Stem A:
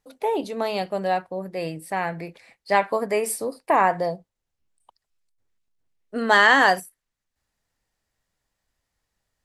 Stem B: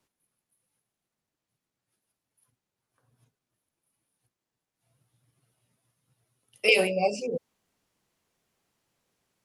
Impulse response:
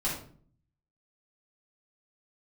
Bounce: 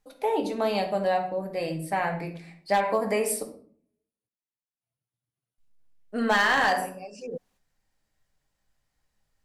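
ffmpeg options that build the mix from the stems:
-filter_complex "[0:a]volume=0.631,asplit=3[s0][s1][s2];[s0]atrim=end=3.43,asetpts=PTS-STARTPTS,afade=t=out:st=3.426:d=0.004:c=hsin[s3];[s1]atrim=start=3.43:end=5.58,asetpts=PTS-STARTPTS,volume=0[s4];[s2]atrim=start=5.58,asetpts=PTS-STARTPTS,afade=t=in:d=0.004:c=hsin[s5];[s3][s4][s5]concat=n=3:v=0:a=1,asplit=3[s6][s7][s8];[s7]volume=0.398[s9];[1:a]agate=range=0.1:threshold=0.00158:ratio=16:detection=peak,acompressor=threshold=0.0398:ratio=6,volume=1.06[s10];[s8]apad=whole_len=416632[s11];[s10][s11]sidechaincompress=threshold=0.0224:ratio=8:attack=16:release=639[s12];[2:a]atrim=start_sample=2205[s13];[s9][s13]afir=irnorm=-1:irlink=0[s14];[s6][s12][s14]amix=inputs=3:normalize=0,asoftclip=type=hard:threshold=0.251,acompressor=threshold=0.112:ratio=6"

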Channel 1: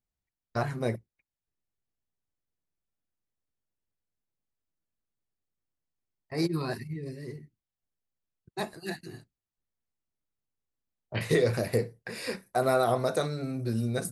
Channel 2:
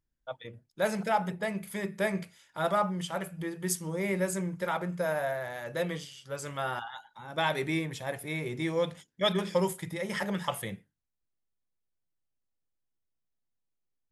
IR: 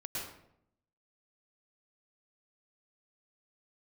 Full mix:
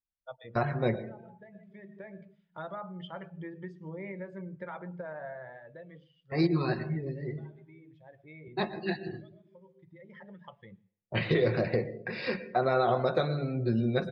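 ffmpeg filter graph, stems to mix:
-filter_complex "[0:a]highshelf=f=6900:g=9,aecho=1:1:5.5:0.33,alimiter=limit=0.141:level=0:latency=1:release=372,volume=1.12,asplit=3[s0][s1][s2];[s1]volume=0.266[s3];[1:a]acompressor=threshold=0.02:ratio=6,volume=0.631,afade=t=out:st=5.3:d=0.35:silence=0.446684,asplit=2[s4][s5];[s5]volume=0.178[s6];[s2]apad=whole_len=622549[s7];[s4][s7]sidechaincompress=threshold=0.00398:ratio=5:attack=28:release=1060[s8];[2:a]atrim=start_sample=2205[s9];[s3][s6]amix=inputs=2:normalize=0[s10];[s10][s9]afir=irnorm=-1:irlink=0[s11];[s0][s8][s11]amix=inputs=3:normalize=0,lowpass=f=3900:w=0.5412,lowpass=f=3900:w=1.3066,afftdn=nr=17:nf=-49"

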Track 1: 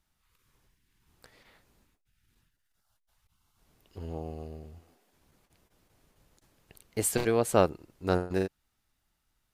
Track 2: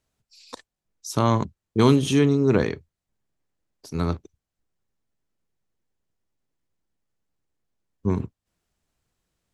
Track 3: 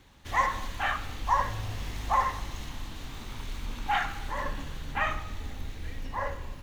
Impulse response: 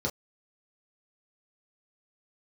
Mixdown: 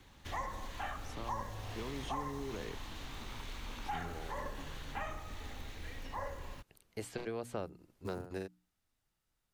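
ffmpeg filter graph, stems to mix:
-filter_complex "[0:a]bandreject=f=60:t=h:w=6,bandreject=f=120:t=h:w=6,bandreject=f=180:t=h:w=6,bandreject=f=240:t=h:w=6,bandreject=f=300:t=h:w=6,volume=0.422[s0];[1:a]alimiter=limit=0.178:level=0:latency=1,acrusher=bits=7:mode=log:mix=0:aa=0.000001,volume=0.224[s1];[2:a]volume=0.794[s2];[s0][s1][s2]amix=inputs=3:normalize=0,acrossover=split=350|770|5100[s3][s4][s5][s6];[s3]acompressor=threshold=0.00708:ratio=4[s7];[s4]acompressor=threshold=0.00708:ratio=4[s8];[s5]acompressor=threshold=0.00447:ratio=4[s9];[s6]acompressor=threshold=0.001:ratio=4[s10];[s7][s8][s9][s10]amix=inputs=4:normalize=0"

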